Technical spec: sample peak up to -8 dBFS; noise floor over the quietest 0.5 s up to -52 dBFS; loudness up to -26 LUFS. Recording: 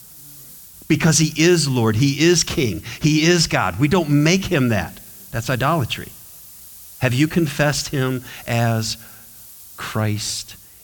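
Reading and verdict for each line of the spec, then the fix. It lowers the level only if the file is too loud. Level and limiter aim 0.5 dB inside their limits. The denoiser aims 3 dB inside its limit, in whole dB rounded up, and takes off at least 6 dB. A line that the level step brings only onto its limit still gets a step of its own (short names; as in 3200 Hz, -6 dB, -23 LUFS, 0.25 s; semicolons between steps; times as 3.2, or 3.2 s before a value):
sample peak -5.5 dBFS: fail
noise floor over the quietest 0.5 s -42 dBFS: fail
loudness -18.5 LUFS: fail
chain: denoiser 6 dB, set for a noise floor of -42 dBFS; gain -8 dB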